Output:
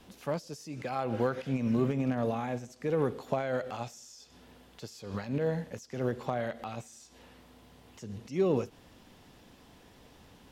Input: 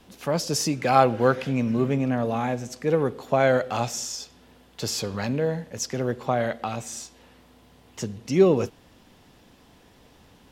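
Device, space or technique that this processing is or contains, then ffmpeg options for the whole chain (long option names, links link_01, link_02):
de-esser from a sidechain: -filter_complex "[0:a]asplit=2[link_01][link_02];[link_02]highpass=4600,apad=whole_len=463755[link_03];[link_01][link_03]sidechaincompress=threshold=-53dB:ratio=3:attack=0.99:release=86,volume=-2dB"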